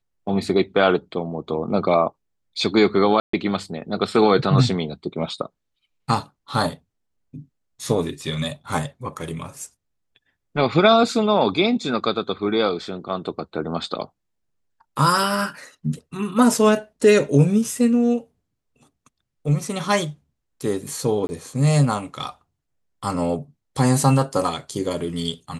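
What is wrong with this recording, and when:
3.2–3.33 gap 0.134 s
21.27–21.29 gap 20 ms

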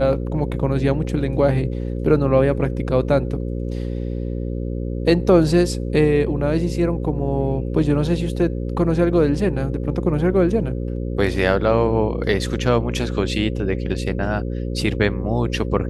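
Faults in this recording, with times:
buzz 60 Hz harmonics 9 -25 dBFS

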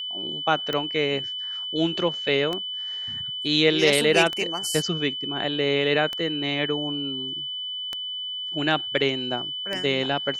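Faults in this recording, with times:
tick 33 1/3 rpm -14 dBFS
tone 3000 Hz -29 dBFS

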